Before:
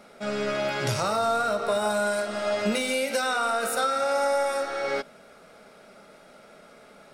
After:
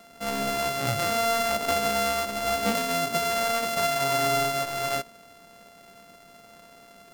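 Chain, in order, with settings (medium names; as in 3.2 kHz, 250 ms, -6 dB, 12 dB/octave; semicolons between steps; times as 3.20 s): sorted samples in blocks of 64 samples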